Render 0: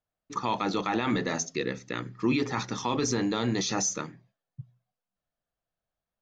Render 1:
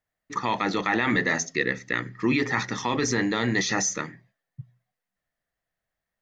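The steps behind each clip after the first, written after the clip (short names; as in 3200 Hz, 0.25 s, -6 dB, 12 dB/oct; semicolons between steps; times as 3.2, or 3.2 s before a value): bell 1900 Hz +14 dB 0.34 oct; gain +2 dB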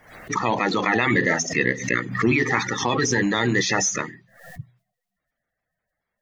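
bin magnitudes rounded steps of 30 dB; backwards sustainer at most 93 dB/s; gain +4 dB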